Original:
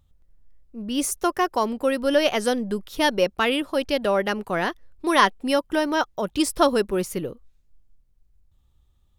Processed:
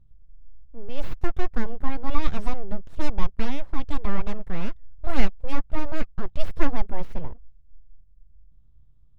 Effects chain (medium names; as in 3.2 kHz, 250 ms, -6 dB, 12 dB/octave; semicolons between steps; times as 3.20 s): full-wave rectifier; RIAA curve playback; trim -8.5 dB